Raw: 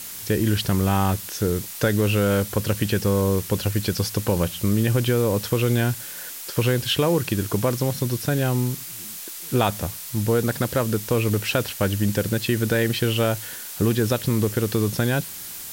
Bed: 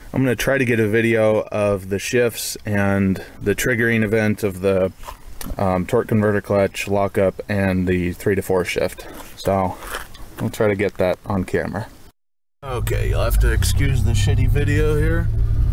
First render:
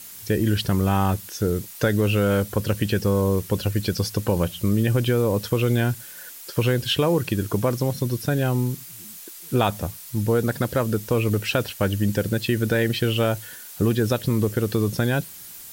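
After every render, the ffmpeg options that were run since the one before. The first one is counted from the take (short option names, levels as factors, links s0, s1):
-af "afftdn=nr=7:nf=-36"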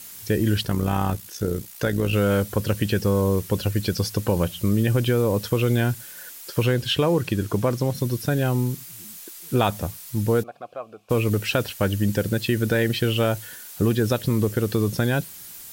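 -filter_complex "[0:a]asettb=1/sr,asplit=3[s0][s1][s2];[s0]atrim=end=0.634[s3];[s1]atrim=start=0.63:end=2.13,asetpts=PTS-STARTPTS,afade=t=in:d=0.004:c=qsin,afade=t=out:st=1.496:d=0.004:c=qsin,tremolo=f=60:d=0.571[s4];[s2]atrim=start=2.126[s5];[s3][s4]acrossfade=d=0.004:c1=hsin:c2=qsin[s6];[s6][s5]acrossfade=d=0.004:c1=qsin:c2=hsin,asettb=1/sr,asplit=3[s7][s8][s9];[s7]atrim=end=6.664[s10];[s8]atrim=start=6.66:end=7.95,asetpts=PTS-STARTPTS,afade=t=in:d=0.004:c=qsin,afade=t=out:st=1.286:d=0.004:c=qsin,highshelf=f=9000:g=-6[s11];[s9]atrim=start=7.946[s12];[s10][s11]acrossfade=d=0.004:c1=hsin:c2=qsin[s13];[s13][s12]acrossfade=d=0.004:c1=qsin:c2=hsin,asplit=3[s14][s15][s16];[s14]afade=t=out:st=10.42:d=0.02[s17];[s15]asplit=3[s18][s19][s20];[s18]bandpass=f=730:t=q:w=8,volume=1[s21];[s19]bandpass=f=1090:t=q:w=8,volume=0.501[s22];[s20]bandpass=f=2440:t=q:w=8,volume=0.355[s23];[s21][s22][s23]amix=inputs=3:normalize=0,afade=t=in:st=10.42:d=0.02,afade=t=out:st=11.09:d=0.02[s24];[s16]afade=t=in:st=11.09:d=0.02[s25];[s17][s24][s25]amix=inputs=3:normalize=0"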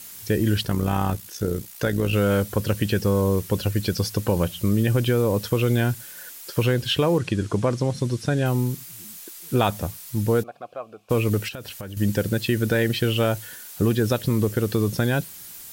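-filter_complex "[0:a]asettb=1/sr,asplit=3[s0][s1][s2];[s0]atrim=end=7.184[s3];[s1]atrim=start=7.18:end=8.46,asetpts=PTS-STARTPTS,afade=t=in:d=0.004:c=qsin,afade=t=out:st=1.276:d=0.004:c=qsin,lowpass=f=9200:w=0.5412,lowpass=f=9200:w=1.3066[s4];[s2]atrim=start=8.456[s5];[s3][s4]acrossfade=d=0.004:c1=hsin:c2=qsin[s6];[s6][s5]acrossfade=d=0.004:c1=qsin:c2=hsin,asettb=1/sr,asplit=3[s7][s8][s9];[s7]atrim=end=11.484[s10];[s8]atrim=start=11.48:end=11.97,asetpts=PTS-STARTPTS,afade=t=in:d=0.004:c=qsin,afade=t=out:st=0.486:d=0.004:c=qsin,acompressor=threshold=0.0282:ratio=10:attack=3.2:release=140:knee=1:detection=peak[s11];[s9]atrim=start=11.966[s12];[s10][s11]acrossfade=d=0.004:c1=hsin:c2=qsin[s13];[s13][s12]acrossfade=d=0.004:c1=qsin:c2=hsin"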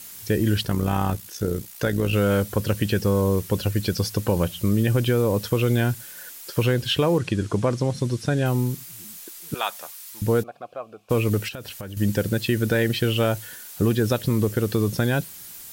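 -filter_complex "[0:a]asettb=1/sr,asplit=3[s0][s1][s2];[s0]atrim=end=9.544[s3];[s1]atrim=start=9.54:end=10.22,asetpts=PTS-STARTPTS,afade=t=in:d=0.004:c=qsin,afade=t=out:st=0.676:d=0.004:c=qsin,highpass=970[s4];[s2]atrim=start=10.216[s5];[s3][s4]acrossfade=d=0.004:c1=hsin:c2=qsin[s6];[s6][s5]acrossfade=d=0.004:c1=qsin:c2=hsin"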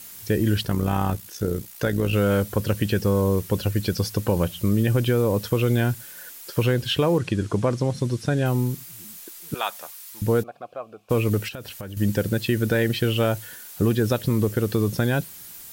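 -af "lowpass=f=2400:p=1,aemphasis=mode=production:type=50kf"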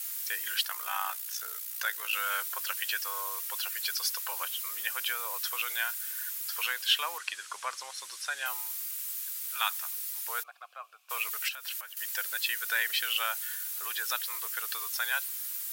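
-af "highpass=f=1100:w=0.5412,highpass=f=1100:w=1.3066,highshelf=f=10000:g=7"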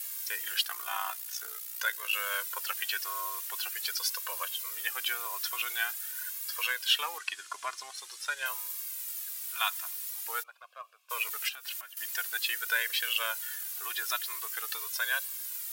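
-filter_complex "[0:a]asplit=2[s0][s1];[s1]aeval=exprs='sgn(val(0))*max(abs(val(0))-0.0106,0)':c=same,volume=0.531[s2];[s0][s2]amix=inputs=2:normalize=0,flanger=delay=1.8:depth=1.1:regen=0:speed=0.46:shape=sinusoidal"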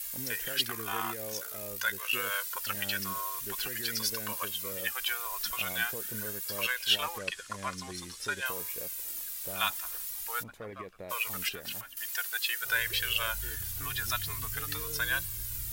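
-filter_complex "[1:a]volume=0.0501[s0];[0:a][s0]amix=inputs=2:normalize=0"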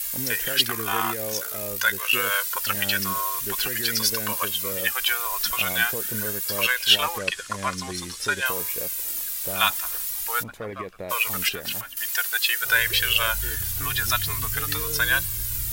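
-af "volume=2.82"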